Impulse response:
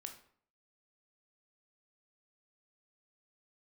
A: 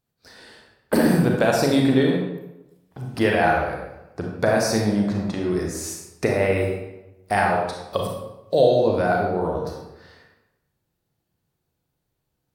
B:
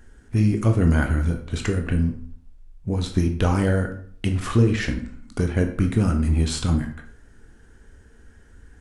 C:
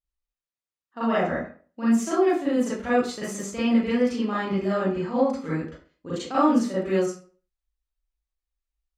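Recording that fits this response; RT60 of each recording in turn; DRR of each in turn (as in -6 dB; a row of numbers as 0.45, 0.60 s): B; 0.95, 0.55, 0.40 s; -0.5, 4.5, -11.5 dB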